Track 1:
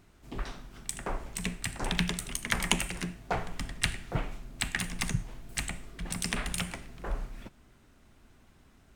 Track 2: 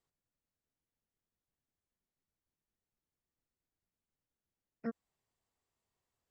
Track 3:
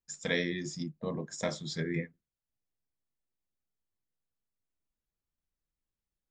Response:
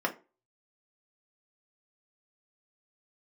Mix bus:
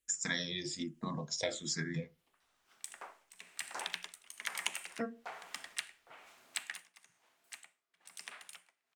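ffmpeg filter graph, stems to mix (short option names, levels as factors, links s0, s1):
-filter_complex "[0:a]highpass=790,tremolo=f=1.1:d=0.88,adelay=1950,volume=0.841,afade=t=out:st=6.56:d=0.5:silence=0.251189[s0];[1:a]equalizer=f=2900:w=1.7:g=12.5,adelay=150,volume=1.33,asplit=2[s1][s2];[s2]volume=0.316[s3];[2:a]equalizer=f=7000:w=0.37:g=12.5,asplit=2[s4][s5];[s5]afreqshift=-1.3[s6];[s4][s6]amix=inputs=2:normalize=1,volume=1.33,asplit=3[s7][s8][s9];[s8]volume=0.1[s10];[s9]apad=whole_len=480716[s11];[s0][s11]sidechaincompress=threshold=0.00355:ratio=5:attack=37:release=1090[s12];[3:a]atrim=start_sample=2205[s13];[s3][s10]amix=inputs=2:normalize=0[s14];[s14][s13]afir=irnorm=-1:irlink=0[s15];[s12][s1][s7][s15]amix=inputs=4:normalize=0,acompressor=threshold=0.0141:ratio=2"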